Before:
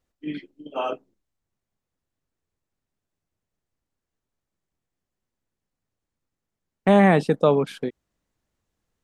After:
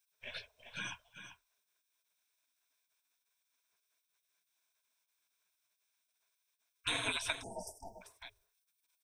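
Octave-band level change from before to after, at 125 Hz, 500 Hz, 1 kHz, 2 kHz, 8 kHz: -27.5 dB, -28.5 dB, -21.5 dB, -9.5 dB, n/a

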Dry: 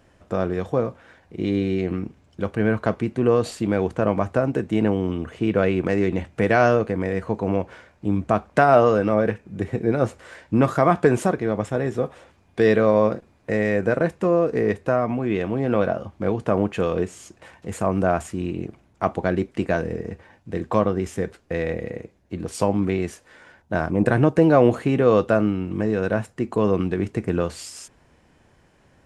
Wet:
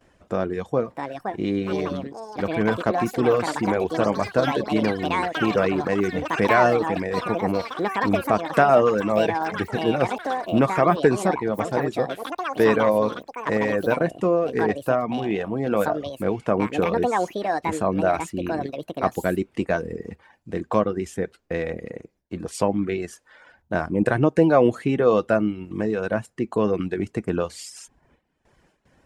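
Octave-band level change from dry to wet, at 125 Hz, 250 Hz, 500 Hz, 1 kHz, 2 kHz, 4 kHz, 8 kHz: -4.5, -1.5, -0.5, +2.0, +1.0, +4.5, +0.5 dB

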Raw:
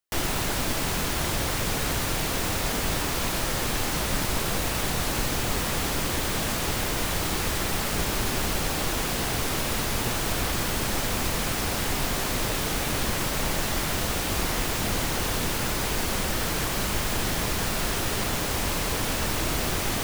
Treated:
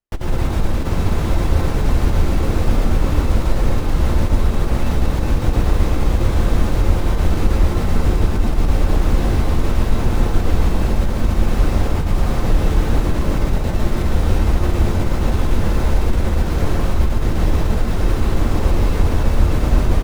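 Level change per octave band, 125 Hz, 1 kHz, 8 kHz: +13.5, +2.5, -9.0 dB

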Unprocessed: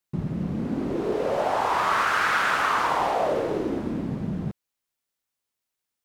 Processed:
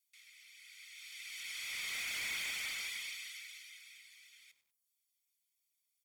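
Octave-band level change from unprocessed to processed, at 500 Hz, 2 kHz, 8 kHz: under -40 dB, -14.0 dB, -2.0 dB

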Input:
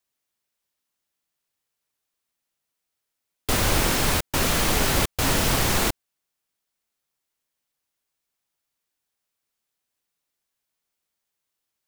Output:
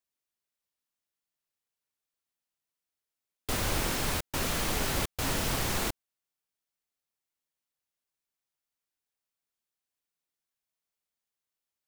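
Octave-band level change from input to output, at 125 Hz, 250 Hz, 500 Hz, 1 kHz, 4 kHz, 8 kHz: -8.5, -8.5, -8.5, -8.5, -8.5, -8.5 dB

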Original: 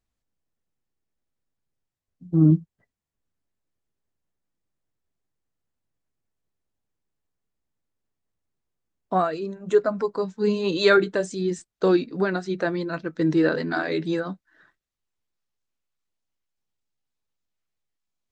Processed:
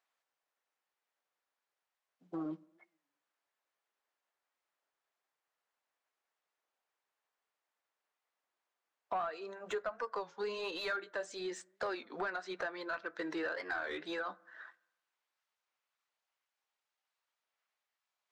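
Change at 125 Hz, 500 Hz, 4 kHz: -34.0, -17.5, -12.0 dB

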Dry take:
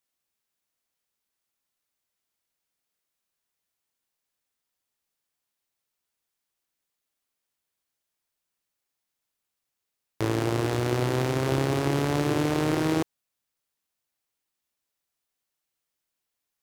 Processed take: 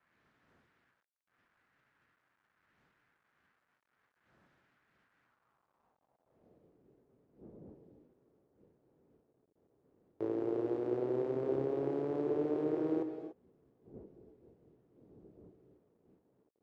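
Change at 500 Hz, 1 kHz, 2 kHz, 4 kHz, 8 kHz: -5.0 dB, -15.5 dB, -23.5 dB, under -25 dB, under -35 dB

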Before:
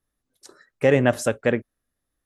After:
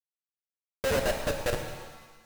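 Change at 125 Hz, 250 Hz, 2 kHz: -11.0, -14.5, -7.0 dB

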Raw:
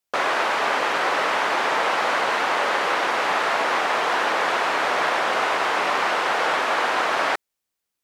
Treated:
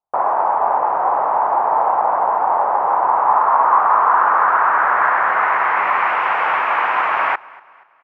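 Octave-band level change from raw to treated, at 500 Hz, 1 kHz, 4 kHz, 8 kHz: +1.0 dB, +8.5 dB, under -10 dB, under -25 dB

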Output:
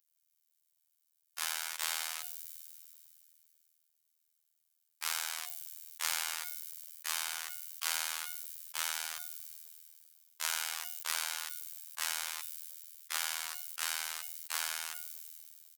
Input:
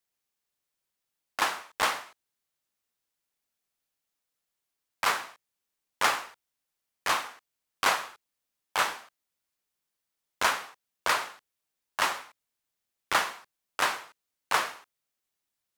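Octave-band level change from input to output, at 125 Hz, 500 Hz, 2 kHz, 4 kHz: under -30 dB, -19.0 dB, -9.0 dB, -3.5 dB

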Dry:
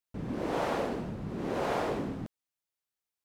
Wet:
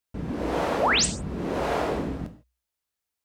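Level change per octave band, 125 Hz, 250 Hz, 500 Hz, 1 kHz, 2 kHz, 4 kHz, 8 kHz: +5.5, +4.5, +5.0, +7.0, +12.0, +17.5, +22.5 dB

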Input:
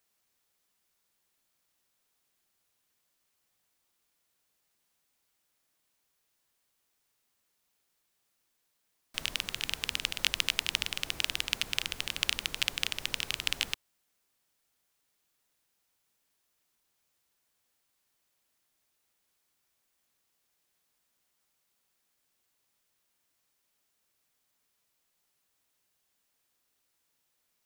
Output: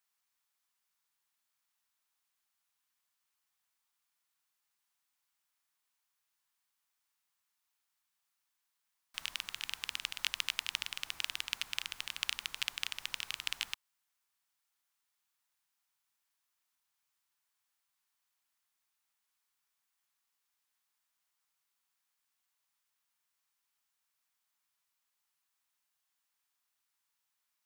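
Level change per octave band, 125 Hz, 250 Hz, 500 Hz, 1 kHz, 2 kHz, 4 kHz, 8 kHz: under -15 dB, under -15 dB, -16.0 dB, -5.0 dB, -6.0 dB, -6.0 dB, -6.5 dB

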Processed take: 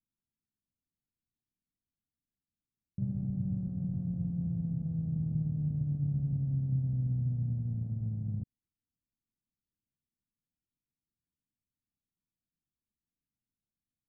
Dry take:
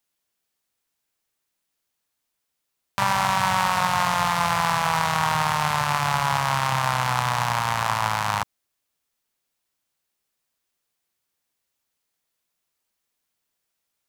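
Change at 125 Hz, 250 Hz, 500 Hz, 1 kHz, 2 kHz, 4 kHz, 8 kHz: 0.0 dB, -0.5 dB, under -25 dB, under -40 dB, under -40 dB, under -40 dB, under -40 dB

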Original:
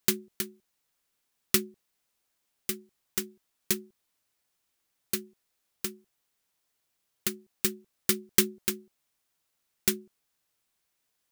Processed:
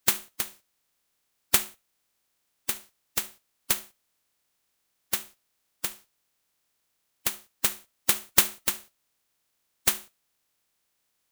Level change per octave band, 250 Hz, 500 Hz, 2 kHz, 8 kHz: -9.5, -5.5, +4.0, +3.0 dB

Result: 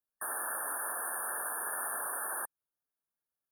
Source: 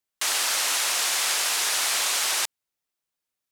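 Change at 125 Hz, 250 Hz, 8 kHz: n/a, -6.5 dB, -13.0 dB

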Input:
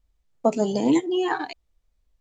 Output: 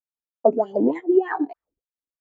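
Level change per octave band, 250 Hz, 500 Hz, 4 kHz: 0.0 dB, +4.5 dB, under -20 dB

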